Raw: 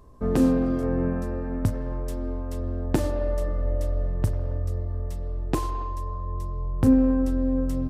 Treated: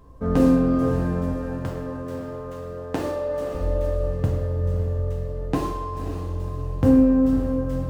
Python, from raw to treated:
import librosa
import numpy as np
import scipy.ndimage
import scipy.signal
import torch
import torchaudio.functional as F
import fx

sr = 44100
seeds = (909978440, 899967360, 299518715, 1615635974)

y = scipy.ndimage.median_filter(x, 9, mode='constant')
y = fx.highpass(y, sr, hz=410.0, slope=6, at=(1.33, 3.55))
y = fx.echo_diffused(y, sr, ms=544, feedback_pct=44, wet_db=-8)
y = fx.rev_gated(y, sr, seeds[0], gate_ms=200, shape='falling', drr_db=-1.0)